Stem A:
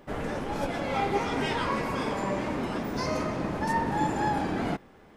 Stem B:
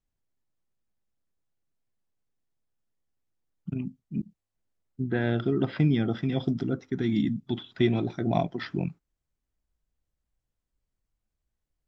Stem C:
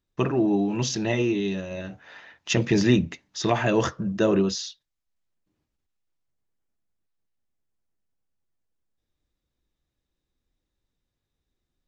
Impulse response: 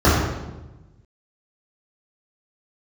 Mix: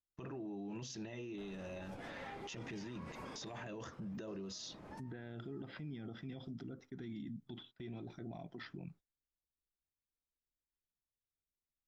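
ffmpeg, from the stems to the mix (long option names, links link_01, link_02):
-filter_complex "[0:a]acompressor=threshold=-31dB:ratio=6,adelay=1300,volume=-13dB[link_01];[1:a]volume=-11dB,asplit=2[link_02][link_03];[2:a]volume=-4dB[link_04];[link_03]apad=whole_len=284897[link_05];[link_01][link_05]sidechaincompress=threshold=-51dB:ratio=10:attack=6.6:release=813[link_06];[link_02][link_04]amix=inputs=2:normalize=0,agate=range=-18dB:threshold=-54dB:ratio=16:detection=peak,acompressor=threshold=-34dB:ratio=4,volume=0dB[link_07];[link_06][link_07]amix=inputs=2:normalize=0,alimiter=level_in=14.5dB:limit=-24dB:level=0:latency=1:release=60,volume=-14.5dB"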